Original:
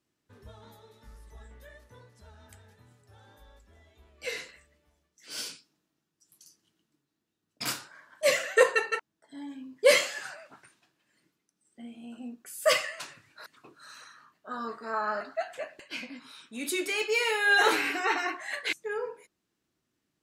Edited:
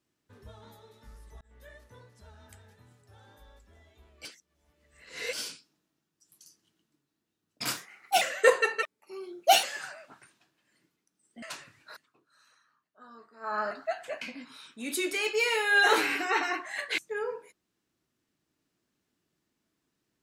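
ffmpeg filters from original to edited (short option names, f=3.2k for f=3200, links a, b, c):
-filter_complex "[0:a]asplit=12[a][b][c][d][e][f][g][h][i][j][k][l];[a]atrim=end=1.41,asetpts=PTS-STARTPTS,afade=t=out:st=1.406:d=0.004:c=hsin[m];[b]atrim=start=1.41:end=4.252,asetpts=PTS-STARTPTS,afade=t=in:d=0.27[n];[c]atrim=start=4.248:end=5.332,asetpts=PTS-STARTPTS,areverse[o];[d]atrim=start=5.328:end=7.774[p];[e]atrim=start=7.77:end=8.35,asetpts=PTS-STARTPTS,asetrate=57330,aresample=44100,atrim=end_sample=19675,asetpts=PTS-STARTPTS[q];[f]atrim=start=8.346:end=8.964[r];[g]atrim=start=8.96:end=10.05,asetpts=PTS-STARTPTS,asetrate=59535,aresample=44100[s];[h]atrim=start=10.046:end=11.842[t];[i]atrim=start=12.918:end=13.57,asetpts=PTS-STARTPTS,afade=t=out:st=0.502:d=0.15:silence=0.16788[u];[j]atrim=start=13.57:end=14.9,asetpts=PTS-STARTPTS,volume=-15.5dB[v];[k]atrim=start=14.9:end=15.712,asetpts=PTS-STARTPTS,afade=t=in:d=0.15:silence=0.16788[w];[l]atrim=start=15.958[x];[m][n]concat=n=2:v=0:a=1[y];[y][o]acrossfade=d=0.004:c1=hsin:c2=hsin[z];[z][p]acrossfade=d=0.004:c1=hsin:c2=hsin[aa];[aa][q]acrossfade=d=0.004:c1=hsin:c2=hsin[ab];[ab][r]acrossfade=d=0.004:c1=hsin:c2=hsin[ac];[ac][s]acrossfade=d=0.004:c1=hsin:c2=hsin[ad];[ad][t]acrossfade=d=0.004:c1=hsin:c2=hsin[ae];[u][v][w]concat=n=3:v=0:a=1[af];[ae][af]acrossfade=d=0.004:c1=hsin:c2=hsin[ag];[ag][x]acrossfade=d=0.004:c1=hsin:c2=hsin"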